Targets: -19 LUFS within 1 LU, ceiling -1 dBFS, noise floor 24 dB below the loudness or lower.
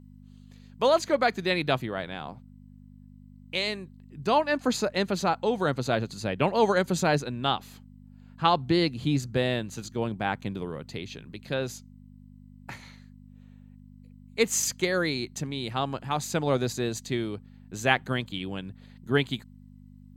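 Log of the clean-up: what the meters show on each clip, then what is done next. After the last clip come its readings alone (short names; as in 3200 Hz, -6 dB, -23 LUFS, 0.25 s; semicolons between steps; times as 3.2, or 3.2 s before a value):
hum 50 Hz; harmonics up to 250 Hz; hum level -48 dBFS; loudness -28.0 LUFS; peak -5.5 dBFS; loudness target -19.0 LUFS
-> de-hum 50 Hz, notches 5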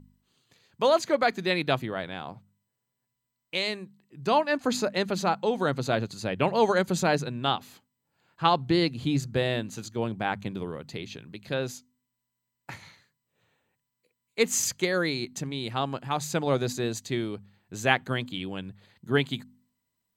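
hum none; loudness -28.0 LUFS; peak -5.0 dBFS; loudness target -19.0 LUFS
-> gain +9 dB; limiter -1 dBFS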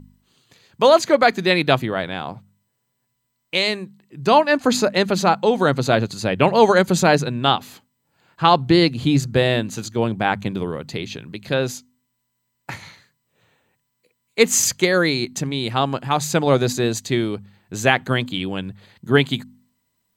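loudness -19.0 LUFS; peak -1.0 dBFS; noise floor -74 dBFS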